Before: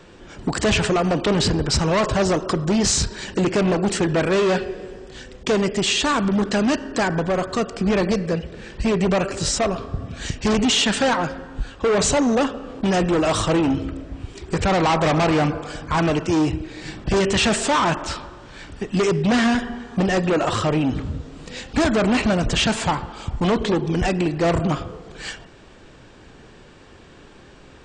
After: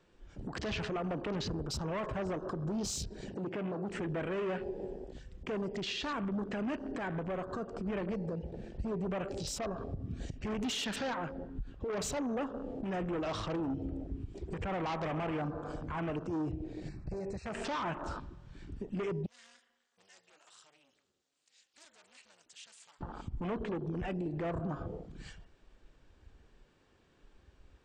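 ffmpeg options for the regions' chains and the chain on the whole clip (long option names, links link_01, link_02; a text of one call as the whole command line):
ffmpeg -i in.wav -filter_complex "[0:a]asettb=1/sr,asplit=3[link_01][link_02][link_03];[link_01]atrim=end=3.294[link_04];[link_02]atrim=start=3.29:end=3.91,asetpts=PTS-STARTPTS,afade=type=in:duration=0.004:curve=qsin,afade=type=out:start_time=0.616:duration=0.004:curve=qsin,acrossover=split=5200[link_05][link_06];[link_06]acompressor=threshold=-54dB:ratio=4:attack=1:release=60[link_07];[link_05][link_07]amix=inputs=2:normalize=0,highpass=96[link_08];[link_03]atrim=start=3.906[link_09];[link_04][link_08]acrossfade=duration=0.004:curve1=hsin:curve2=qsin[link_10];[link_10][link_09]acrossfade=duration=0.004:curve1=qsin:curve2=hsin,asettb=1/sr,asplit=3[link_11][link_12][link_13];[link_11]atrim=end=11.294[link_14];[link_12]atrim=start=11.29:end=11.9,asetpts=PTS-STARTPTS,afade=type=in:duration=0.004:curve=qsin,afade=type=out:start_time=0.606:duration=0.004:curve=qsin,lowpass=frequency=3700:poles=1,acompressor=threshold=-29dB:ratio=3:attack=3.2:release=140:knee=1:detection=peak[link_15];[link_13]atrim=start=11.896[link_16];[link_14][link_15]acrossfade=duration=0.004:curve1=hsin:curve2=qsin[link_17];[link_17][link_16]acrossfade=duration=0.004:curve1=qsin:curve2=hsin,asettb=1/sr,asplit=3[link_18][link_19][link_20];[link_18]atrim=end=16.884[link_21];[link_19]atrim=start=16.88:end=17.55,asetpts=PTS-STARTPTS,afade=type=in:duration=0.004:curve=qsin,afade=type=out:start_time=0.666:duration=0.004:curve=qsin,equalizer=frequency=270:width=1.4:gain=-8.5,acompressor=threshold=-30dB:ratio=6:attack=3.2:release=140:knee=1:detection=peak,asuperstop=centerf=3200:order=12:qfactor=2.6[link_22];[link_20]atrim=start=17.546[link_23];[link_21][link_22]acrossfade=duration=0.004:curve1=hsin:curve2=qsin[link_24];[link_24][link_23]acrossfade=duration=0.004:curve1=qsin:curve2=hsin,asettb=1/sr,asplit=3[link_25][link_26][link_27];[link_25]atrim=end=19.264[link_28];[link_26]atrim=start=19.26:end=23.01,asetpts=PTS-STARTPTS,afade=type=in:duration=0.004:curve=qsin,afade=type=out:start_time=3.746:duration=0.004:curve=qsin,tremolo=f=290:d=0.919,aderivative[link_29];[link_27]atrim=start=23.006[link_30];[link_28][link_29]acrossfade=duration=0.004:curve1=hsin:curve2=qsin[link_31];[link_31][link_30]acrossfade=duration=0.004:curve1=qsin:curve2=hsin,afwtdn=0.0316,acompressor=threshold=-26dB:ratio=6,alimiter=level_in=0.5dB:limit=-24dB:level=0:latency=1:release=114,volume=-0.5dB,volume=-5dB" out.wav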